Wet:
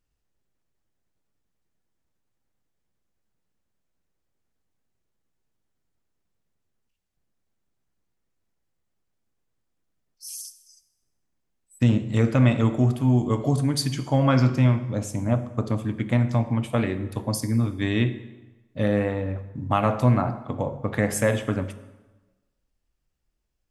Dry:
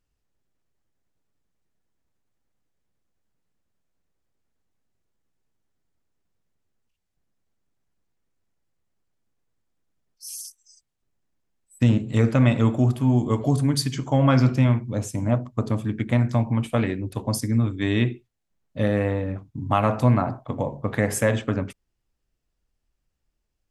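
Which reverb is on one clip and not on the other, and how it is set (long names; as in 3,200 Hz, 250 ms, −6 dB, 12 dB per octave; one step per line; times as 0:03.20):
dense smooth reverb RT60 1.2 s, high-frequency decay 0.8×, DRR 11.5 dB
level −1 dB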